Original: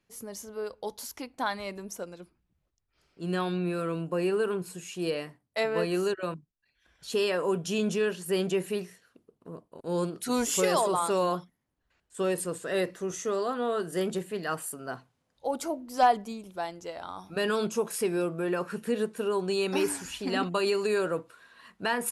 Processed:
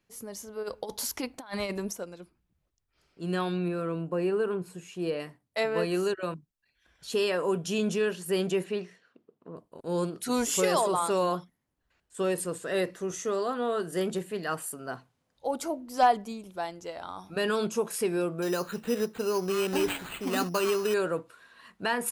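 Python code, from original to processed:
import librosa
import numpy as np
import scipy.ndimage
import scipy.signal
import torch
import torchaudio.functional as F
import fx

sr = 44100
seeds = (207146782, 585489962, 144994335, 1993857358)

y = fx.over_compress(x, sr, threshold_db=-37.0, ratio=-0.5, at=(0.62, 1.91), fade=0.02)
y = fx.high_shelf(y, sr, hz=2500.0, db=-9.0, at=(3.68, 5.2))
y = fx.bandpass_edges(y, sr, low_hz=160.0, high_hz=fx.line((8.63, 4900.0), (9.55, 3000.0)), at=(8.63, 9.55), fade=0.02)
y = fx.resample_bad(y, sr, factor=8, down='none', up='hold', at=(18.42, 20.94))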